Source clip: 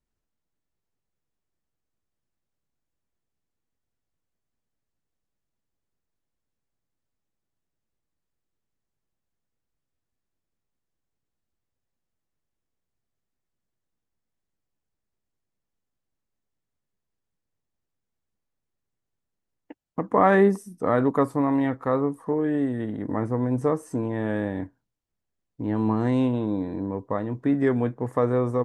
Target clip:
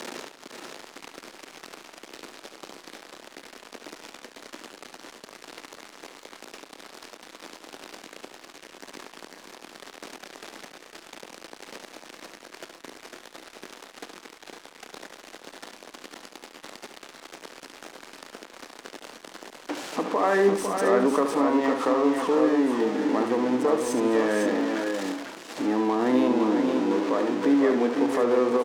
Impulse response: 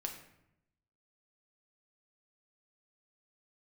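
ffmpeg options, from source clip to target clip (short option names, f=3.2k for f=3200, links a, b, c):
-filter_complex "[0:a]aeval=exprs='val(0)+0.5*0.0376*sgn(val(0))':c=same,highpass=f=270:w=0.5412,highpass=f=270:w=1.3066,highshelf=f=5.1k:g=3,asplit=2[a][b];[b]acompressor=threshold=-37dB:ratio=6,volume=1dB[c];[a][c]amix=inputs=2:normalize=0,alimiter=limit=-13.5dB:level=0:latency=1:release=37,acrossover=split=920[d][e];[e]adynamicsmooth=sensitivity=5.5:basefreq=3.2k[f];[d][f]amix=inputs=2:normalize=0,aecho=1:1:71|219|503|528|534:0.398|0.119|0.501|0.141|0.282"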